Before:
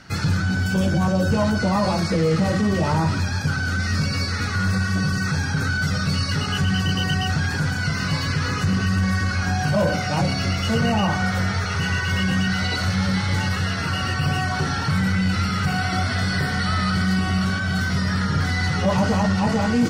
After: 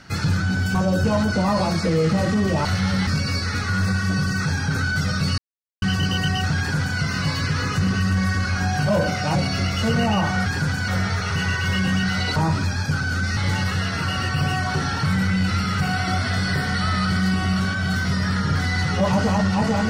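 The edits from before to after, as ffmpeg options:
-filter_complex "[0:a]asplit=10[a][b][c][d][e][f][g][h][i][j];[a]atrim=end=0.752[k];[b]atrim=start=1.018:end=2.922[l];[c]atrim=start=12.798:end=13.222[m];[d]atrim=start=3.928:end=6.24,asetpts=PTS-STARTPTS,afade=t=out:st=2.308:d=0.004:c=hsin[n];[e]atrim=start=6.24:end=6.68,asetpts=PTS-STARTPTS,volume=0[o];[f]atrim=start=6.68:end=11.322,asetpts=PTS-STARTPTS,afade=t=in:d=0.004:c=hsin[p];[g]atrim=start=7.438:end=7.862[q];[h]atrim=start=11.318:end=12.802[r];[i]atrim=start=2.918:end=3.932[s];[j]atrim=start=13.218[t];[k][l]acrossfade=d=0.004:c1=hsin:c2=hsin[u];[u][m]acrossfade=d=0.004:c1=hsin:c2=hsin[v];[n][o][p]concat=n=3:v=0:a=1[w];[v][w]acrossfade=d=0.004:c1=hsin:c2=hsin[x];[x][q]acrossfade=d=0.004:c1=hsin:c2=hsin[y];[y][r]acrossfade=d=0.004:c1=hsin:c2=hsin[z];[z][s]acrossfade=d=0.004:c1=hsin:c2=hsin[aa];[aa][t]acrossfade=d=0.004:c1=hsin:c2=hsin"

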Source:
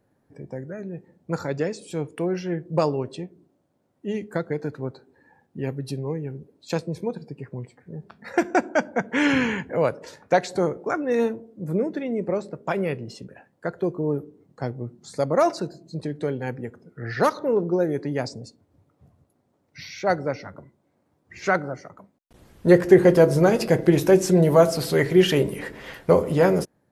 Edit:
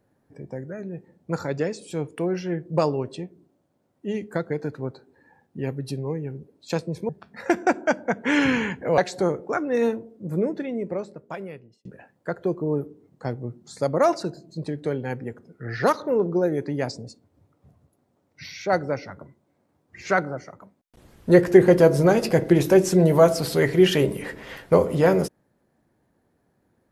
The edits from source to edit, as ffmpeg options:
-filter_complex "[0:a]asplit=4[a][b][c][d];[a]atrim=end=7.092[e];[b]atrim=start=7.968:end=9.862[f];[c]atrim=start=10.348:end=13.22,asetpts=PTS-STARTPTS,afade=t=out:st=1.502:d=1.37[g];[d]atrim=start=13.22,asetpts=PTS-STARTPTS,afade=t=in:d=0.004:c=hsin[h];[e][f]acrossfade=d=0.004:c1=hsin:c2=hsin[i];[g][h]concat=n=2:v=0:a=1[j];[i][j]acrossfade=d=0.004:c1=hsin:c2=hsin"

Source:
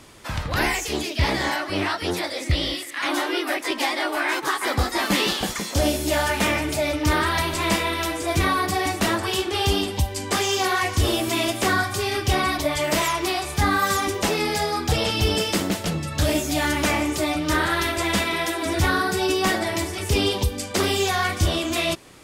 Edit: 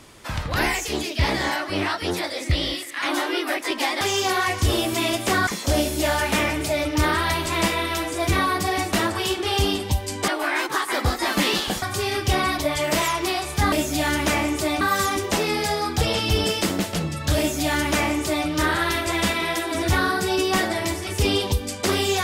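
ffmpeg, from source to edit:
-filter_complex "[0:a]asplit=7[a][b][c][d][e][f][g];[a]atrim=end=4.012[h];[b]atrim=start=10.358:end=11.822[i];[c]atrim=start=5.548:end=10.362[j];[d]atrim=start=4.008:end=5.552[k];[e]atrim=start=11.818:end=13.722[l];[f]atrim=start=16.288:end=17.382[m];[g]atrim=start=13.718[n];[h][i]acrossfade=d=0.004:c1=hsin:c2=hsin[o];[o][j]acrossfade=d=0.004:c1=hsin:c2=hsin[p];[p][k]acrossfade=d=0.004:c1=hsin:c2=hsin[q];[q][l]acrossfade=d=0.004:c1=hsin:c2=hsin[r];[r][m]acrossfade=d=0.004:c1=hsin:c2=hsin[s];[s][n]acrossfade=d=0.004:c1=hsin:c2=hsin"

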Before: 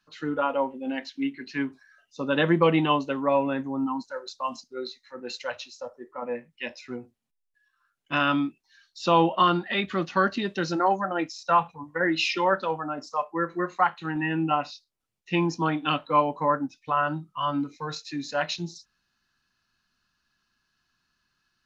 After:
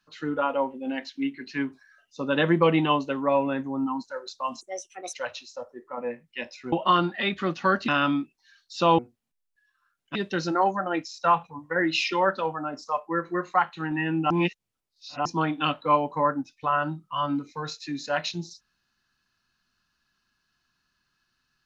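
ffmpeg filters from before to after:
-filter_complex "[0:a]asplit=9[a][b][c][d][e][f][g][h][i];[a]atrim=end=4.614[j];[b]atrim=start=4.61:end=5.38,asetpts=PTS-STARTPTS,asetrate=64827,aresample=44100[k];[c]atrim=start=5.376:end=6.972[l];[d]atrim=start=9.238:end=10.402[m];[e]atrim=start=8.138:end=9.242[n];[f]atrim=start=6.968:end=8.142[o];[g]atrim=start=10.398:end=14.552[p];[h]atrim=start=14.548:end=15.502,asetpts=PTS-STARTPTS,areverse[q];[i]atrim=start=15.498[r];[j][k]acrossfade=d=0.004:c1=hsin:c2=hsin[s];[s][l]acrossfade=d=0.004:c1=hsin:c2=hsin[t];[t][m]acrossfade=d=0.004:c1=hsin:c2=hsin[u];[u][n]acrossfade=d=0.004:c1=hsin:c2=hsin[v];[v][o]acrossfade=d=0.004:c1=hsin:c2=hsin[w];[w][p]acrossfade=d=0.004:c1=hsin:c2=hsin[x];[x][q]acrossfade=d=0.004:c1=hsin:c2=hsin[y];[y][r]acrossfade=d=0.004:c1=hsin:c2=hsin"

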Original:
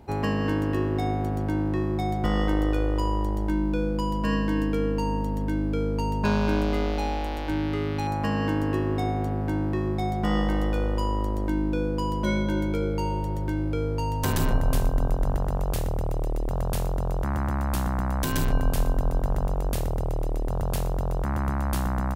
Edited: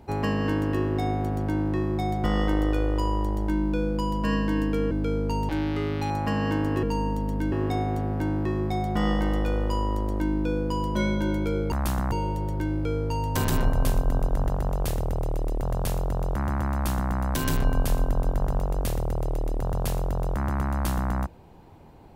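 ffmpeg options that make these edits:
-filter_complex "[0:a]asplit=7[a][b][c][d][e][f][g];[a]atrim=end=4.912[h];[b]atrim=start=5.598:end=6.182[i];[c]atrim=start=7.458:end=8.802[j];[d]atrim=start=4.908:end=5.602[k];[e]atrim=start=8.798:end=13.002[l];[f]atrim=start=17.598:end=18.002[m];[g]atrim=start=12.998[n];[h][i]acrossfade=d=0.004:c1=hsin:c2=hsin[o];[o][j]acrossfade=d=0.004:c1=hsin:c2=hsin[p];[p][k]acrossfade=d=0.004:c1=hsin:c2=hsin[q];[q][l]acrossfade=d=0.004:c1=hsin:c2=hsin[r];[r][m]acrossfade=d=0.004:c1=hsin:c2=hsin[s];[s][n]acrossfade=d=0.004:c1=hsin:c2=hsin"

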